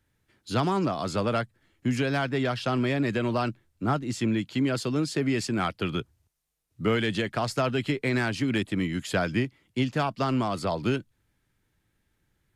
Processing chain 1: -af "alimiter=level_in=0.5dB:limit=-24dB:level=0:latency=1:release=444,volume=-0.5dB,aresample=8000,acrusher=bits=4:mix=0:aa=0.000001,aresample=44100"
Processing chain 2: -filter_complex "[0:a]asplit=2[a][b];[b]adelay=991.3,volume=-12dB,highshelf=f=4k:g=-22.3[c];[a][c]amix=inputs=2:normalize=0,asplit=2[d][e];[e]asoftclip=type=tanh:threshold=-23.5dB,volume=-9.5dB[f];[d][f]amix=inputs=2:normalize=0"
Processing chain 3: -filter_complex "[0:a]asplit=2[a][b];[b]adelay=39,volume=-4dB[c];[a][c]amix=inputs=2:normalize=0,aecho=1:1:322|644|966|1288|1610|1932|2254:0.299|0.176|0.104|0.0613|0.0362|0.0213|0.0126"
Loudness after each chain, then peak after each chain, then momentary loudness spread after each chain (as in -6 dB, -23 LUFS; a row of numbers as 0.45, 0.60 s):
-33.5, -26.0, -26.0 LUFS; -19.5, -12.5, -11.0 dBFS; 6, 13, 11 LU